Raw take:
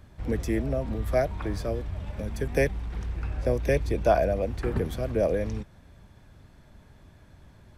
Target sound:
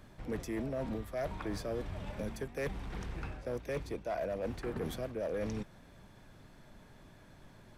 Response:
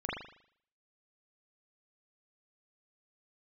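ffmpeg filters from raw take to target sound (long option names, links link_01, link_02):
-af "equalizer=frequency=66:width_type=o:width=1.2:gain=-13.5,areverse,acompressor=threshold=-32dB:ratio=12,areverse,volume=30.5dB,asoftclip=hard,volume=-30.5dB"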